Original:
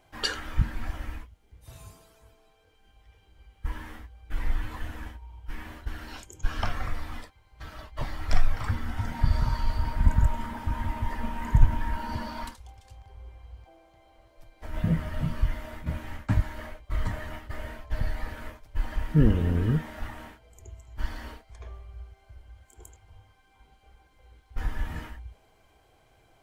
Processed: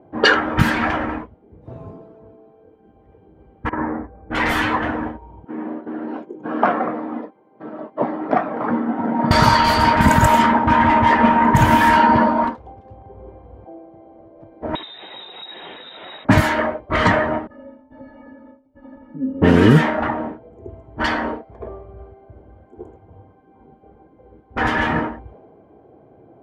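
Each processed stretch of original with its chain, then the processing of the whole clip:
3.69–4.31 s: steep low-pass 2.1 kHz + compressor with a negative ratio -39 dBFS
5.44–9.31 s: high-pass 200 Hz 24 dB/octave + distance through air 87 m
14.75–16.25 s: compression, threshold -37 dBFS + waveshaping leveller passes 1 + frequency inversion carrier 3.8 kHz
17.47–19.42 s: compression 12:1, threshold -24 dBFS + inharmonic resonator 260 Hz, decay 0.31 s, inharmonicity 0.03
whole clip: level-controlled noise filter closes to 360 Hz, open at -18.5 dBFS; high-pass 230 Hz 12 dB/octave; loudness maximiser +25 dB; trim -1 dB

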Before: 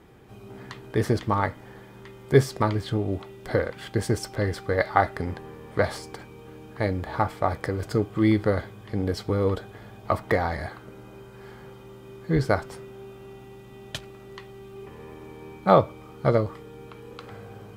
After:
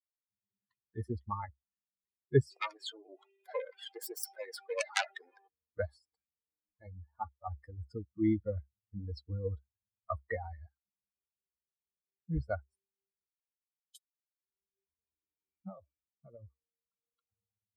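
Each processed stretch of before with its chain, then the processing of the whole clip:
2.51–5.48 s: self-modulated delay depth 0.82 ms + high-pass 390 Hz 24 dB/octave + level flattener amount 50%
6.60–7.47 s: upward compressor, threshold -36 dBFS + three-phase chorus
13.26–14.42 s: differentiator + three bands expanded up and down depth 70%
15.19–17.01 s: median filter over 3 samples + compression 5:1, threshold -23 dBFS
whole clip: expander on every frequency bin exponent 3; peaking EQ 68 Hz +13 dB 0.6 oct; trim -6.5 dB

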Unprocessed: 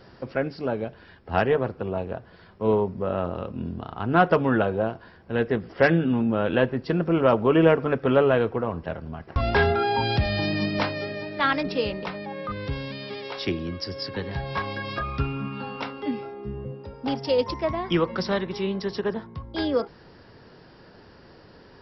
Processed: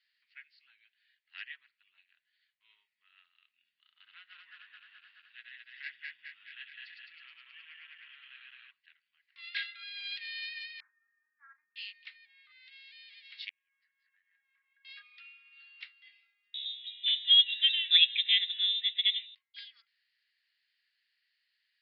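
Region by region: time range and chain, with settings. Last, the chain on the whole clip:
2.12–2.93 s: expander -50 dBFS + high-pass 270 Hz
3.74–8.71 s: backward echo that repeats 106 ms, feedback 77%, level -1 dB + compression, threshold -18 dBFS
9.38–10.01 s: steep high-pass 1 kHz 72 dB/octave + peaking EQ 3.9 kHz +3.5 dB 0.43 oct
10.80–11.76 s: steep low-pass 2 kHz 96 dB/octave + static phaser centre 400 Hz, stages 8 + doubling 36 ms -9 dB
13.49–14.85 s: low-pass 1.4 kHz 24 dB/octave + tilt EQ +4.5 dB/octave + compression 12:1, threshold -39 dBFS
16.54–19.35 s: companding laws mixed up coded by mu + frequency inversion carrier 3.8 kHz
whole clip: elliptic band-pass 1.9–4.4 kHz, stop band 60 dB; upward expansion 1.5:1, over -52 dBFS; trim +1 dB

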